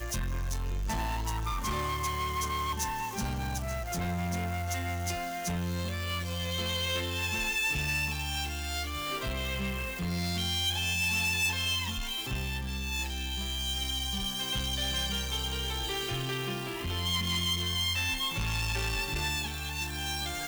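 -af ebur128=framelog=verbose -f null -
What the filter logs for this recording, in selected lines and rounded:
Integrated loudness:
  I:         -31.1 LUFS
  Threshold: -41.1 LUFS
Loudness range:
  LRA:         3.4 LU
  Threshold: -51.0 LUFS
  LRA low:   -32.8 LUFS
  LRA high:  -29.4 LUFS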